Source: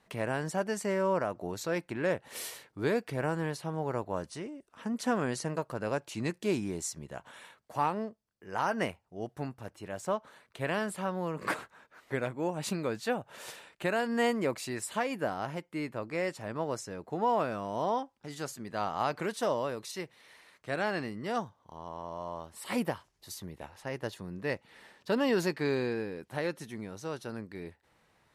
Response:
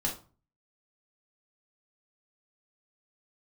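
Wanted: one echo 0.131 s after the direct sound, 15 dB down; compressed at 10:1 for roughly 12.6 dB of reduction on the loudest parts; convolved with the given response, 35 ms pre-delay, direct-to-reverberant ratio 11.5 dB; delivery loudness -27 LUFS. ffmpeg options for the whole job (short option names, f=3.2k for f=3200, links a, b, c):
-filter_complex "[0:a]acompressor=threshold=-37dB:ratio=10,aecho=1:1:131:0.178,asplit=2[a][b];[1:a]atrim=start_sample=2205,adelay=35[c];[b][c]afir=irnorm=-1:irlink=0,volume=-16.5dB[d];[a][d]amix=inputs=2:normalize=0,volume=15.5dB"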